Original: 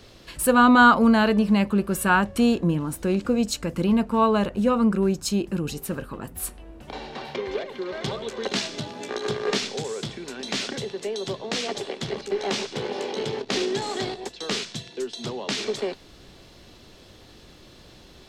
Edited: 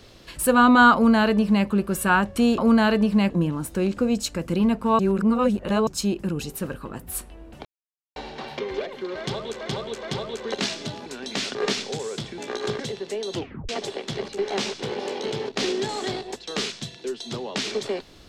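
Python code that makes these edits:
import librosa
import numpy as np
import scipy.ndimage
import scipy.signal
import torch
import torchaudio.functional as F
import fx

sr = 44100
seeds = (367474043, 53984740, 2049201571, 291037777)

y = fx.edit(x, sr, fx.duplicate(start_s=0.94, length_s=0.72, to_s=2.58),
    fx.reverse_span(start_s=4.27, length_s=0.88),
    fx.insert_silence(at_s=6.93, length_s=0.51),
    fx.repeat(start_s=7.96, length_s=0.42, count=3),
    fx.swap(start_s=8.99, length_s=0.41, other_s=10.23, other_length_s=0.49),
    fx.tape_stop(start_s=11.27, length_s=0.35), tone=tone)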